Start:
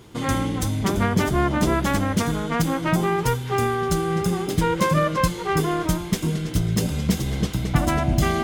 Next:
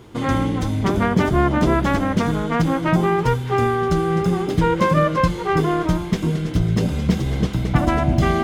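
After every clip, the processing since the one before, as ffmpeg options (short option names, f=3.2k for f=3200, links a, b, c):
-filter_complex "[0:a]acrossover=split=6000[a][b];[b]acompressor=threshold=-42dB:ratio=4:attack=1:release=60[c];[a][c]amix=inputs=2:normalize=0,highshelf=f=3k:g=-8,bandreject=f=50:t=h:w=6,bandreject=f=100:t=h:w=6,bandreject=f=150:t=h:w=6,bandreject=f=200:t=h:w=6,volume=4dB"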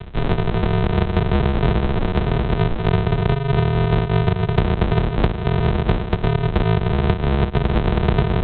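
-filter_complex "[0:a]lowshelf=f=66:g=10.5,aresample=8000,acrusher=samples=29:mix=1:aa=0.000001,aresample=44100,acrossover=split=150|1200[a][b][c];[a]acompressor=threshold=-28dB:ratio=4[d];[b]acompressor=threshold=-27dB:ratio=4[e];[c]acompressor=threshold=-40dB:ratio=4[f];[d][e][f]amix=inputs=3:normalize=0,volume=8dB"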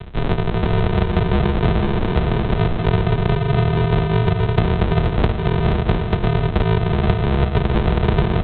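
-af "aecho=1:1:477:0.473"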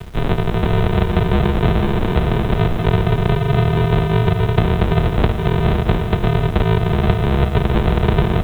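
-af "acrusher=bits=7:mix=0:aa=0.000001,volume=1.5dB"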